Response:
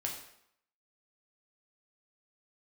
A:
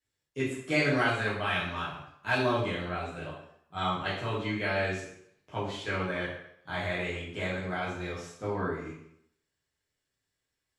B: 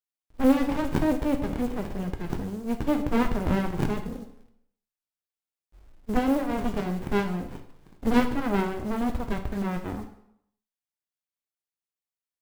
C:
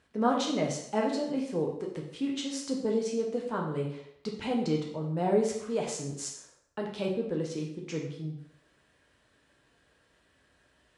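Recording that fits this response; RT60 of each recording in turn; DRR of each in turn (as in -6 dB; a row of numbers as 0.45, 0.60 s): C; 0.70, 0.70, 0.70 s; -9.5, 5.0, -1.5 dB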